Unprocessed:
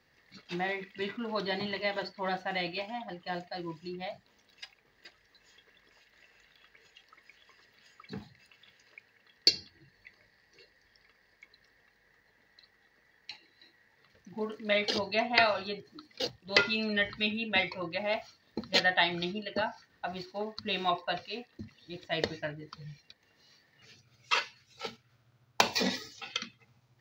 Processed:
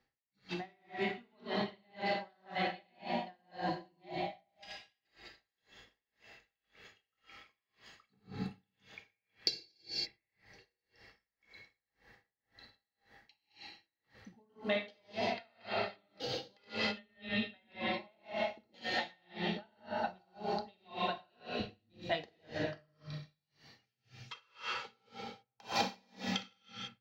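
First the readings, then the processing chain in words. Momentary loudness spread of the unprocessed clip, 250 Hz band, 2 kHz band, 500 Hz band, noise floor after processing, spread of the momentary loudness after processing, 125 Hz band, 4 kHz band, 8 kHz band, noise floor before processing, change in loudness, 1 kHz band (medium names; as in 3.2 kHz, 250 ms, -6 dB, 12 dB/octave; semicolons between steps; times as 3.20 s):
20 LU, -4.0 dB, -9.0 dB, -5.5 dB, under -85 dBFS, 20 LU, -2.5 dB, -8.0 dB, -9.5 dB, -69 dBFS, -8.0 dB, -4.5 dB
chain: chunks repeated in reverse 123 ms, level -6 dB; treble shelf 11 kHz -6 dB; bucket-brigade echo 120 ms, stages 2048, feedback 42%, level -10.5 dB; gated-style reverb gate 360 ms flat, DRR -2 dB; compression, threshold -31 dBFS, peak gain reduction 13 dB; bass shelf 410 Hz +4.5 dB; feedback comb 670 Hz, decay 0.35 s; small resonant body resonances 800/3200 Hz, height 12 dB, ringing for 95 ms; level rider gain up to 11 dB; logarithmic tremolo 1.9 Hz, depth 39 dB; trim -3 dB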